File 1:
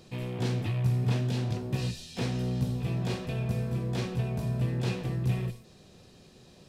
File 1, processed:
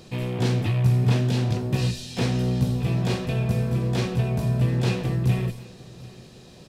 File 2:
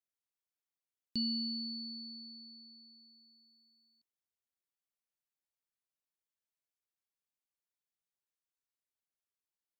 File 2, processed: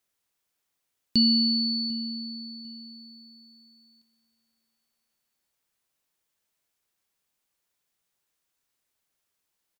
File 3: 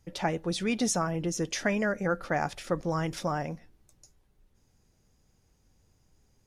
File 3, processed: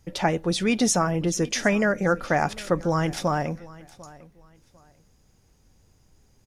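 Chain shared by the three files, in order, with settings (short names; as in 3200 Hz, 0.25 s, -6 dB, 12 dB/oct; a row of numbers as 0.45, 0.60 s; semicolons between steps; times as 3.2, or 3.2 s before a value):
feedback echo 0.747 s, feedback 26%, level -21 dB; match loudness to -24 LUFS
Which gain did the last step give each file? +7.0, +14.0, +6.5 dB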